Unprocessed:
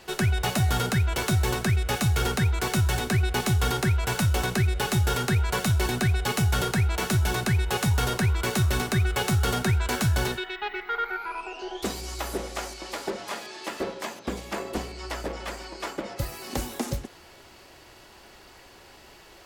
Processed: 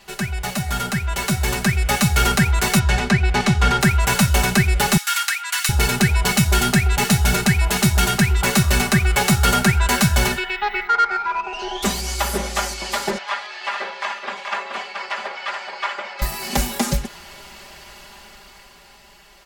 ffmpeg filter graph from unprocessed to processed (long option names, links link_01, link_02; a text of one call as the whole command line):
ffmpeg -i in.wav -filter_complex "[0:a]asettb=1/sr,asplit=3[link_01][link_02][link_03];[link_01]atrim=end=2.794[link_04];[link_02]atrim=start=2.79:end=3.81,asetpts=PTS-STARTPTS,afade=type=in:duration=0.004:curve=qsin,afade=type=out:start_time=1.016:duration=0.004:curve=qsin,highshelf=frequency=6300:gain=-4.5,adynamicsmooth=sensitivity=2:basefreq=6300[link_05];[link_03]atrim=start=3.806[link_06];[link_04][link_05]acrossfade=duration=0.004:curve1=hsin:curve2=qsin[link_07];[link_07][link_06]acrossfade=duration=0.004:curve1=qsin:curve2=hsin,asettb=1/sr,asplit=3[link_08][link_09][link_10];[link_08]atrim=end=4.974[link_11];[link_09]atrim=start=4.97:end=8.44,asetpts=PTS-STARTPTS,afade=type=in:duration=0.004:curve=qsin,afade=type=out:start_time=3.466:duration=0.004:curve=qsin,bandreject=frequency=550:width=14,acrossover=split=1200[link_12][link_13];[link_12]adelay=720[link_14];[link_14][link_13]amix=inputs=2:normalize=0,atrim=end_sample=153027[link_15];[link_10]atrim=start=8.436[link_16];[link_11][link_15]acrossfade=duration=0.004:curve1=hsin:curve2=qsin[link_17];[link_17][link_16]acrossfade=duration=0.004:curve1=qsin:curve2=hsin,asettb=1/sr,asplit=3[link_18][link_19][link_20];[link_18]atrim=end=10.874[link_21];[link_19]atrim=start=10.87:end=11.53,asetpts=PTS-STARTPTS,afade=type=in:duration=0.004:curve=qsin,afade=type=out:start_time=0.656:duration=0.004:curve=qsin,highpass=54,adynamicsmooth=sensitivity=2.5:basefreq=1700[link_22];[link_20]atrim=start=11.526[link_23];[link_21][link_22]acrossfade=duration=0.004:curve1=hsin:curve2=qsin[link_24];[link_24][link_23]acrossfade=duration=0.004:curve1=qsin:curve2=hsin,asettb=1/sr,asplit=3[link_25][link_26][link_27];[link_25]atrim=end=13.184[link_28];[link_26]atrim=start=13.18:end=16.22,asetpts=PTS-STARTPTS,afade=type=in:duration=0.004:curve=qsin,afade=type=out:start_time=3.036:duration=0.004:curve=qsin,highpass=790,lowpass=3100,aecho=1:1:428:0.531,atrim=end_sample=134064[link_29];[link_27]atrim=start=16.216[link_30];[link_28][link_29]acrossfade=duration=0.004:curve1=hsin:curve2=qsin[link_31];[link_31][link_30]acrossfade=duration=0.004:curve1=qsin:curve2=hsin,equalizer=frequency=380:width=1.2:gain=-8.5,aecho=1:1:5:0.87,dynaudnorm=framelen=230:gausssize=13:maxgain=9.5dB" out.wav